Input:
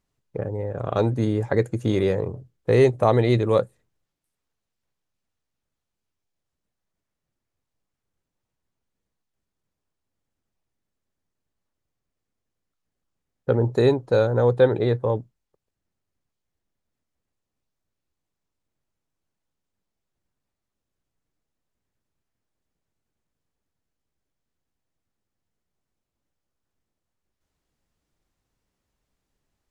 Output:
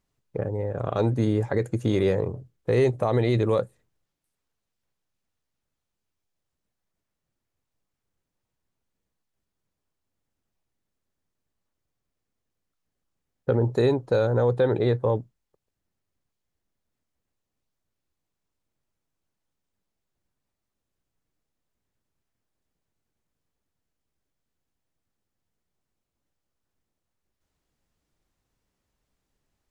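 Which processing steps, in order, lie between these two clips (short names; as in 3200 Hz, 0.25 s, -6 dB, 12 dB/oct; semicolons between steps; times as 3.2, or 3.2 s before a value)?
limiter -12.5 dBFS, peak gain reduction 8 dB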